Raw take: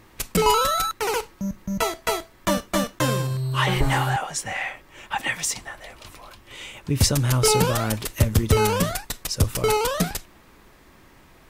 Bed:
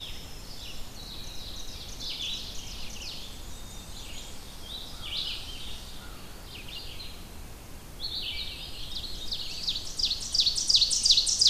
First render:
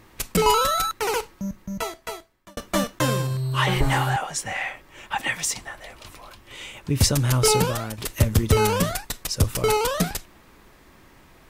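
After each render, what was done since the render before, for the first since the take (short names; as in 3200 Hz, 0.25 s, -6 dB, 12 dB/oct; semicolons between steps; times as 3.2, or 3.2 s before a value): 1.2–2.57 fade out; 7.53–7.98 fade out, to -11.5 dB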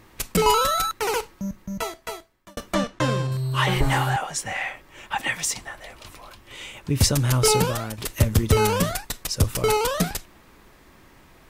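2.74–3.32 air absorption 77 m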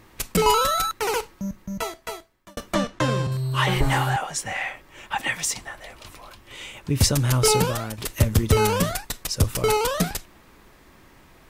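2.75–3.27 three-band squash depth 40%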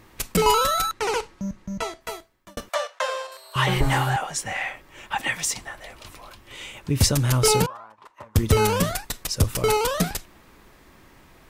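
0.91–2.01 LPF 8100 Hz; 2.69–3.56 elliptic high-pass 530 Hz, stop band 50 dB; 7.66–8.36 band-pass 1000 Hz, Q 5.2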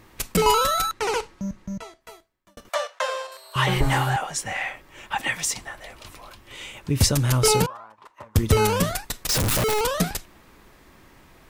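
1.78–2.65 gain -11 dB; 9.29–9.81 infinite clipping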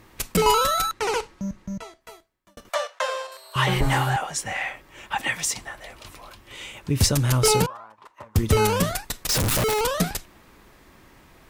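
one-sided clip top -12.5 dBFS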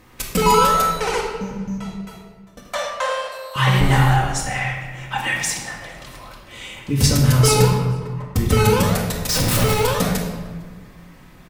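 outdoor echo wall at 78 m, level -25 dB; shoebox room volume 1100 m³, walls mixed, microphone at 2 m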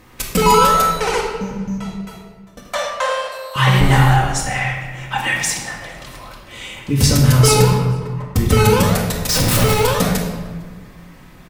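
gain +3 dB; limiter -1 dBFS, peak gain reduction 2.5 dB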